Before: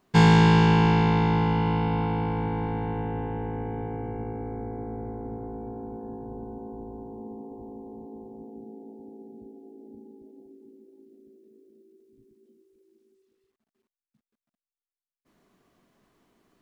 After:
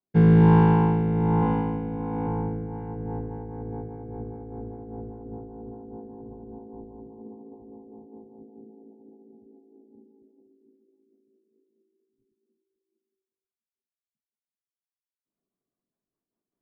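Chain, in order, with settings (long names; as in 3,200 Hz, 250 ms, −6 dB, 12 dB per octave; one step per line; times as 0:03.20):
low-pass filter 1,100 Hz 12 dB per octave
0:01.38–0:02.27: flutter between parallel walls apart 6.9 metres, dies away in 0.53 s
in parallel at 0 dB: downward compressor, threshold −34 dBFS, peak gain reduction 18.5 dB
on the sum: rotating-speaker cabinet horn 1.2 Hz, later 5 Hz, at 0:02.42
multiband upward and downward expander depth 70%
level −4.5 dB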